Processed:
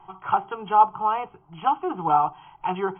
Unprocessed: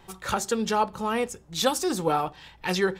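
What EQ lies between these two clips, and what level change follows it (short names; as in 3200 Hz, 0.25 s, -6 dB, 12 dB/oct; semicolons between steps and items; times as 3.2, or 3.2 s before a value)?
brick-wall FIR low-pass 3300 Hz; band shelf 1200 Hz +11 dB; fixed phaser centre 350 Hz, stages 8; -1.5 dB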